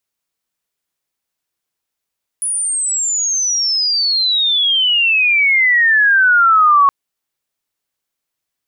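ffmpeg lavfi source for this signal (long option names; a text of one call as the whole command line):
ffmpeg -f lavfi -i "aevalsrc='pow(10,(-16+9.5*t/4.47)/20)*sin(2*PI*10000*4.47/log(1100/10000)*(exp(log(1100/10000)*t/4.47)-1))':duration=4.47:sample_rate=44100" out.wav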